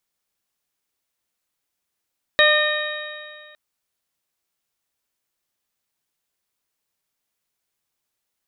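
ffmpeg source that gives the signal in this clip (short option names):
-f lavfi -i "aevalsrc='0.158*pow(10,-3*t/2.03)*sin(2*PI*601.84*t)+0.0794*pow(10,-3*t/2.03)*sin(2*PI*1208.71*t)+0.211*pow(10,-3*t/2.03)*sin(2*PI*1825.58*t)+0.0668*pow(10,-3*t/2.03)*sin(2*PI*2457.26*t)+0.0422*pow(10,-3*t/2.03)*sin(2*PI*3108.4*t)+0.15*pow(10,-3*t/2.03)*sin(2*PI*3783.38*t)':d=1.16:s=44100"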